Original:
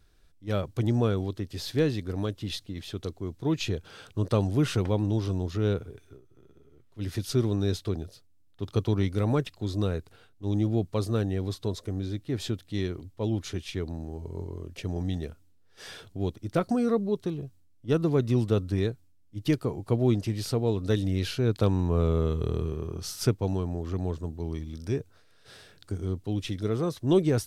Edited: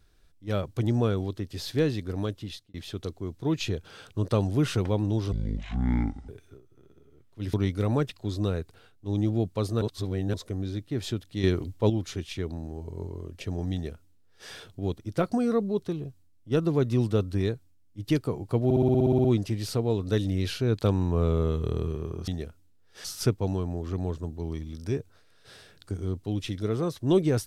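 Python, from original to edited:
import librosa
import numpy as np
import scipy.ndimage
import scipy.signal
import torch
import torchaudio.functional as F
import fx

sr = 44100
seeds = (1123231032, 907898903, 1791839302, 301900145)

y = fx.edit(x, sr, fx.fade_out_span(start_s=2.32, length_s=0.42),
    fx.speed_span(start_s=5.32, length_s=0.56, speed=0.58),
    fx.cut(start_s=7.13, length_s=1.78),
    fx.reverse_span(start_s=11.19, length_s=0.52),
    fx.clip_gain(start_s=12.81, length_s=0.46, db=7.5),
    fx.duplicate(start_s=15.1, length_s=0.77, to_s=23.05),
    fx.stutter(start_s=20.02, slice_s=0.06, count=11), tone=tone)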